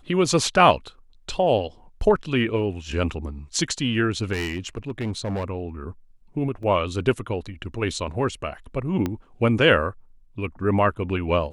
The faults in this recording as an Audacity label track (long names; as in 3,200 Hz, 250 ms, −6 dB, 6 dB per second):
4.320000	5.440000	clipping −23 dBFS
6.630000	6.630000	drop-out 2.2 ms
9.060000	9.060000	click −13 dBFS